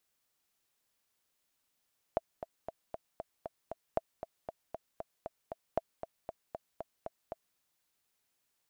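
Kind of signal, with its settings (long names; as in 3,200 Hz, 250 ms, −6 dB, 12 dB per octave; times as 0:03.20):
click track 233 BPM, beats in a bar 7, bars 3, 657 Hz, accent 10.5 dB −16 dBFS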